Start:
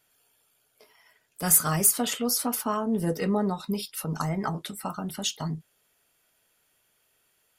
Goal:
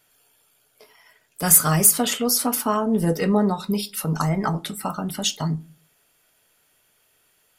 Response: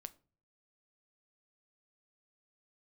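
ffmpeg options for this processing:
-filter_complex "[0:a]asplit=2[a][b];[1:a]atrim=start_sample=2205[c];[b][c]afir=irnorm=-1:irlink=0,volume=16dB[d];[a][d]amix=inputs=2:normalize=0,volume=-7dB"

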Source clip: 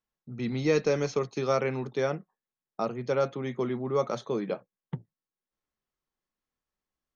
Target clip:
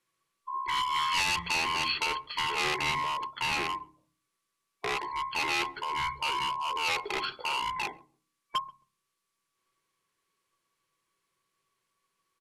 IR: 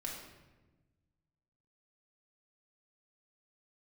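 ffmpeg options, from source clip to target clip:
-filter_complex "[0:a]afftfilt=real='real(if(between(b,1,1012),(2*floor((b-1)/92)+1)*92-b,b),0)':imag='imag(if(between(b,1,1012),(2*floor((b-1)/92)+1)*92-b,b),0)*if(between(b,1,1012),-1,1)':win_size=2048:overlap=0.75,bandreject=f=60:t=h:w=6,bandreject=f=120:t=h:w=6,bandreject=f=180:t=h:w=6,bandreject=f=240:t=h:w=6,bandreject=f=300:t=h:w=6,bandreject=f=360:t=h:w=6,bandreject=f=420:t=h:w=6,bandreject=f=480:t=h:w=6,bandreject=f=540:t=h:w=6,volume=29.5dB,asoftclip=hard,volume=-29.5dB,equalizer=f=250:t=o:w=0.67:g=8,equalizer=f=630:t=o:w=0.67:g=8,equalizer=f=2.5k:t=o:w=0.67:g=-5,acrossover=split=190|3000[a][b][c];[b]acompressor=threshold=-47dB:ratio=1.5[d];[a][d][c]amix=inputs=3:normalize=0,highshelf=f=1.8k:t=q:w=3:g=7,asplit=2[e][f];[f]adelay=78,lowpass=f=870:p=1,volume=-19dB,asplit=2[g][h];[h]adelay=78,lowpass=f=870:p=1,volume=0.27[i];[e][g][i]amix=inputs=3:normalize=0,asetrate=25442,aresample=44100,volume=5dB"

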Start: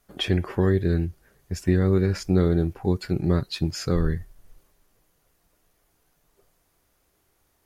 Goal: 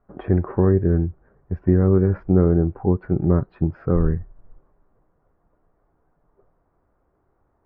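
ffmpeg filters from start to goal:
-af "lowpass=f=1.3k:w=0.5412,lowpass=f=1.3k:w=1.3066,volume=4dB"

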